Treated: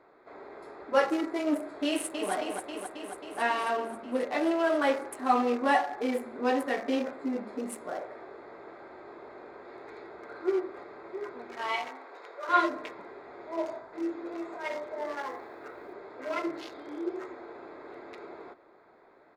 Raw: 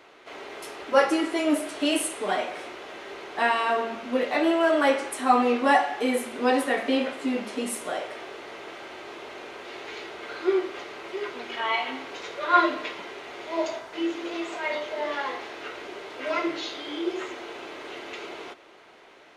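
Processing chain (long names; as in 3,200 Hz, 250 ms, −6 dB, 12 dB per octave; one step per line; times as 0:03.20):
adaptive Wiener filter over 15 samples
0:01.87–0:02.32: delay throw 270 ms, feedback 75%, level −5.5 dB
0:11.88–0:12.49: high-pass filter 500 Hz 12 dB per octave
0:15.19–0:15.93: log-companded quantiser 8 bits
level −4.5 dB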